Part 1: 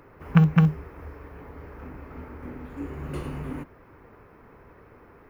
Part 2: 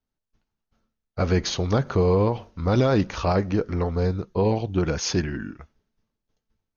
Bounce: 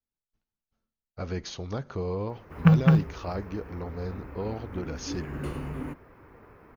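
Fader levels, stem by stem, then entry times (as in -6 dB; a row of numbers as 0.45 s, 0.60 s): -1.0 dB, -11.5 dB; 2.30 s, 0.00 s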